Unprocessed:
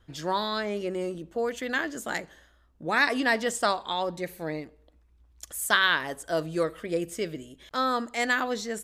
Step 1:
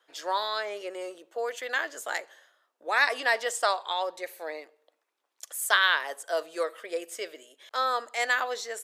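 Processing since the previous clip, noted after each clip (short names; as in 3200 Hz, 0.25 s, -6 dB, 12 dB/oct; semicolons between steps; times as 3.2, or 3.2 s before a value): HPF 480 Hz 24 dB/oct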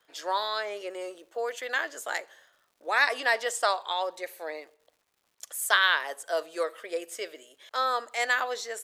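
crackle 240/s -56 dBFS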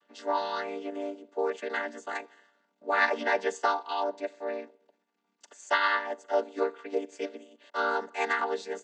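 chord vocoder minor triad, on G3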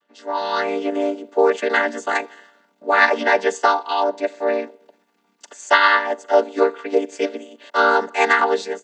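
AGC gain up to 14.5 dB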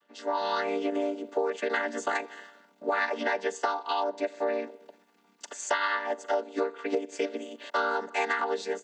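compressor 6:1, threshold -26 dBFS, peak gain reduction 16 dB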